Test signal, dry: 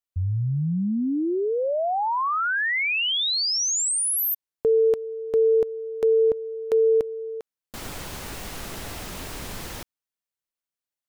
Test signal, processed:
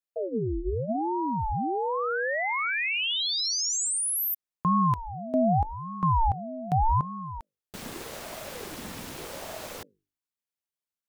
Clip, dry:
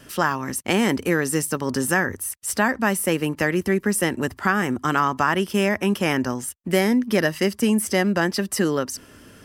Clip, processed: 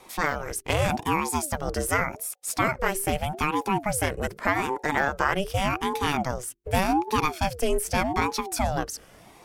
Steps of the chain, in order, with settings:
mains-hum notches 50/100/150/200 Hz
ring modulator whose carrier an LFO sweeps 420 Hz, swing 55%, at 0.84 Hz
level −1 dB

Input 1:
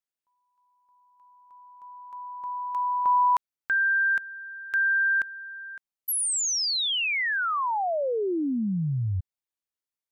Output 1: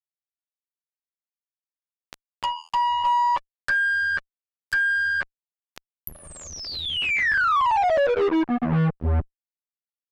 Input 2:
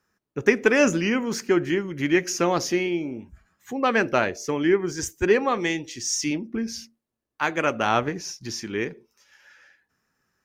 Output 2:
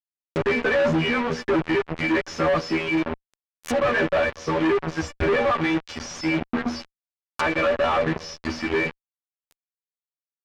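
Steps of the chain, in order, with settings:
in parallel at +2 dB: downward compressor 16 to 1, threshold −30 dBFS
on the sum: phases set to zero 80.3 Hz
reverb reduction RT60 1.4 s
mains-hum notches 60/120/180/240/300/360/420/480 Hz
tuned comb filter 580 Hz, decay 0.2 s, harmonics all, mix 90%
fuzz pedal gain 56 dB, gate −50 dBFS
treble cut that deepens with the level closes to 2,200 Hz, closed at −18 dBFS
level −4.5 dB

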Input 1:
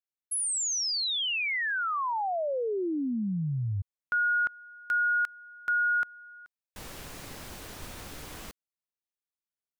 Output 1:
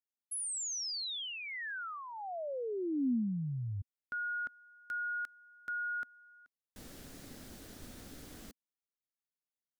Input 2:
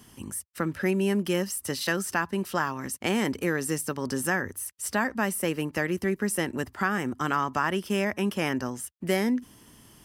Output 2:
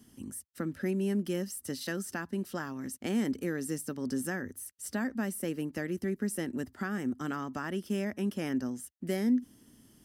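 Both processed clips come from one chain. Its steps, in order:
graphic EQ with 15 bands 250 Hz +8 dB, 1,000 Hz −8 dB, 2,500 Hz −5 dB
level −8 dB

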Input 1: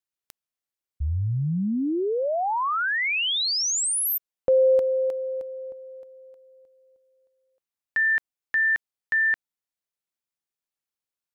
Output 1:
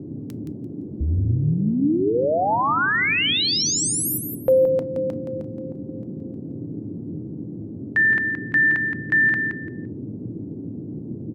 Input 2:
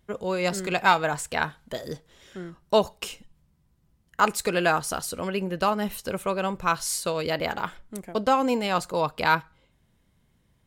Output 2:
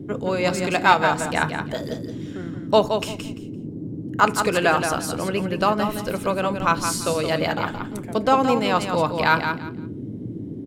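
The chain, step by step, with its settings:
high-shelf EQ 9,200 Hz −6.5 dB
noise in a band 97–340 Hz −37 dBFS
repeating echo 171 ms, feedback 22%, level −7 dB
feedback delay network reverb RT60 0.4 s, high-frequency decay 0.55×, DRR 15 dB
level +3.5 dB

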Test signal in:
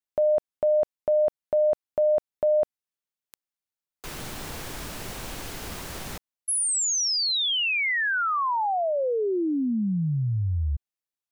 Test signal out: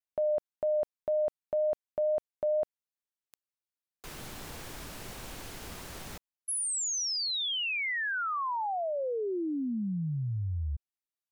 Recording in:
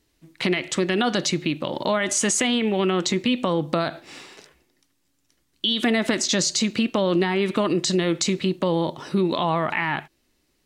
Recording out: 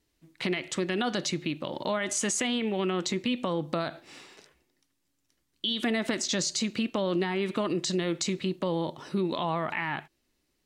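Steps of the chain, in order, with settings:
pitch vibrato 2 Hz 14 cents
level −7 dB

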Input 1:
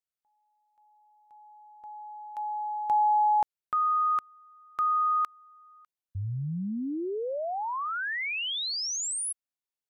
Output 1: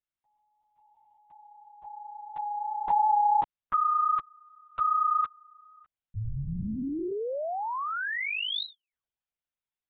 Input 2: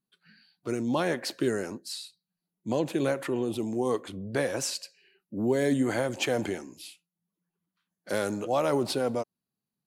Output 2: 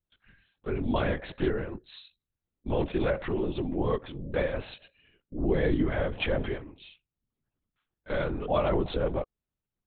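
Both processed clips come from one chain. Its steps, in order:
linear-prediction vocoder at 8 kHz whisper

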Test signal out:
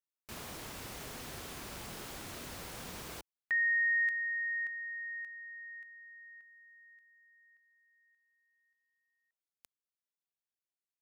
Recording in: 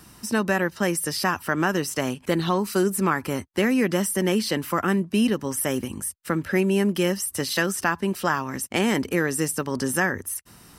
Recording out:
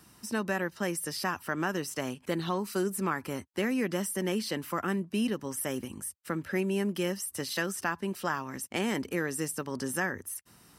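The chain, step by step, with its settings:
high-pass filter 76 Hz 6 dB per octave
level −8 dB

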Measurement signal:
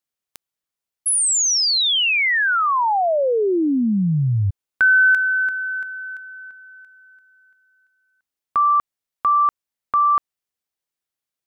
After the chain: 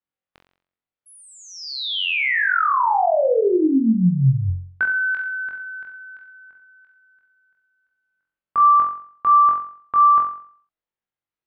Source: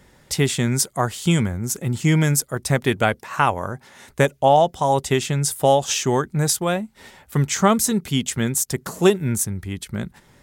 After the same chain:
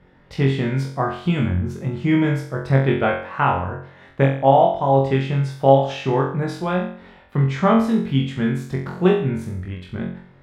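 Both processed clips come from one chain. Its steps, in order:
high-frequency loss of the air 380 metres
on a send: flutter between parallel walls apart 3.8 metres, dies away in 0.52 s
on the sum: level −1.5 dB

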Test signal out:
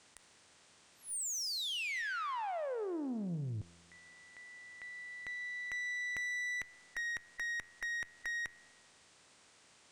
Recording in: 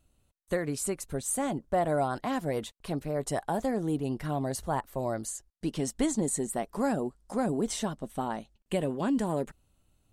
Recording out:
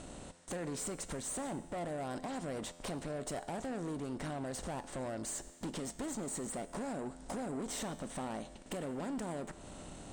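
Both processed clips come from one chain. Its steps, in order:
compressor on every frequency bin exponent 0.6
Butterworth low-pass 9,300 Hz 72 dB per octave
downward compressor 6 to 1, threshold −36 dBFS
tube saturation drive 39 dB, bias 0.35
tuned comb filter 86 Hz, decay 1.5 s, harmonics all, mix 60%
level +11 dB

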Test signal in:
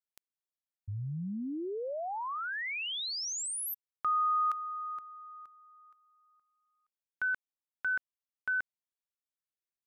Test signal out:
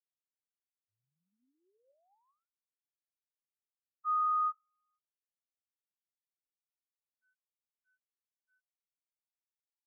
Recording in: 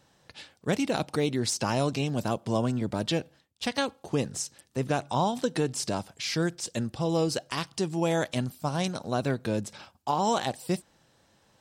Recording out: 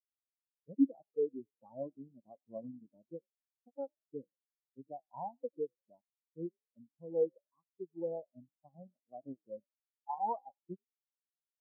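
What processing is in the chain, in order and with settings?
Butterworth low-pass 1,300 Hz 36 dB per octave
low-shelf EQ 310 Hz −7 dB
in parallel at −8 dB: bit reduction 5 bits
on the sum: tuned comb filter 270 Hz, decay 0.23 s, harmonics all, mix 40%
on a send: echo with shifted repeats 90 ms, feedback 60%, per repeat +45 Hz, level −14 dB
on the sum: every bin expanded away from the loudest bin 4 to 1

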